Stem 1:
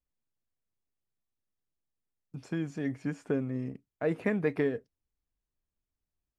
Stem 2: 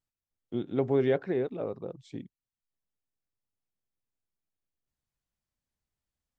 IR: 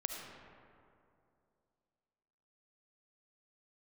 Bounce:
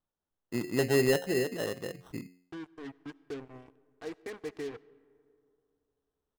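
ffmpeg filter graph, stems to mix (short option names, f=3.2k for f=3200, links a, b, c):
-filter_complex "[0:a]aecho=1:1:2.6:0.89,acrusher=bits=4:mix=0:aa=0.5,volume=-14.5dB,asplit=2[a][b];[b]volume=-17dB[c];[1:a]bandreject=f=89.98:t=h:w=4,bandreject=f=179.96:t=h:w=4,bandreject=f=269.94:t=h:w=4,bandreject=f=359.92:t=h:w=4,bandreject=f=449.9:t=h:w=4,bandreject=f=539.88:t=h:w=4,bandreject=f=629.86:t=h:w=4,bandreject=f=719.84:t=h:w=4,acrusher=samples=19:mix=1:aa=0.000001,volume=0.5dB[d];[2:a]atrim=start_sample=2205[e];[c][e]afir=irnorm=-1:irlink=0[f];[a][d][f]amix=inputs=3:normalize=0"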